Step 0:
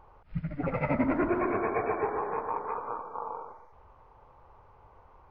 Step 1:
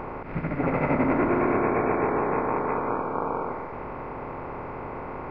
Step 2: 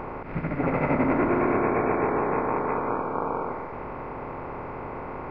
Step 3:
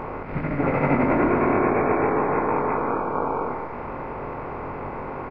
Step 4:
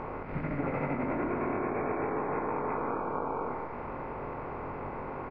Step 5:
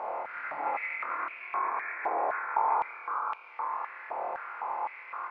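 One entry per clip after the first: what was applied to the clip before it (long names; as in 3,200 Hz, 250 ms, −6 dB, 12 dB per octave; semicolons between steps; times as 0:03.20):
compressor on every frequency bin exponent 0.4
no processing that can be heard
double-tracking delay 21 ms −5 dB; level +2 dB
downward compressor, threshold −22 dBFS, peak gain reduction 7.5 dB; high-frequency loss of the air 51 metres; level −6 dB
flutter between parallel walls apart 4.6 metres, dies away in 0.39 s; high-pass on a step sequencer 3.9 Hz 700–2,600 Hz; level −3 dB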